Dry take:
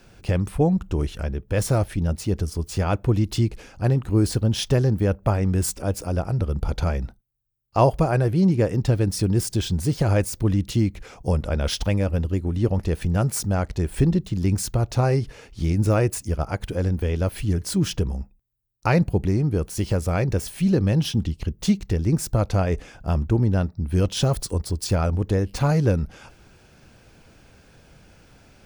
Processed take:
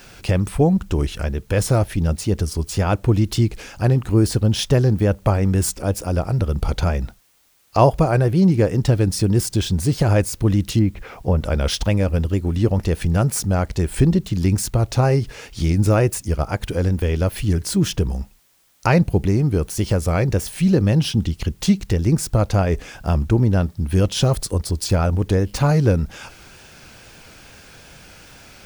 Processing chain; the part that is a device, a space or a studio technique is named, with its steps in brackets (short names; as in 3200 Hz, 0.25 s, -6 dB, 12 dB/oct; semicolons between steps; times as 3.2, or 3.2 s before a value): 10.79–11.38 Bessel low-pass 1800 Hz, order 2; noise-reduction cassette on a plain deck (mismatched tape noise reduction encoder only; wow and flutter; white noise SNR 41 dB); gain +3.5 dB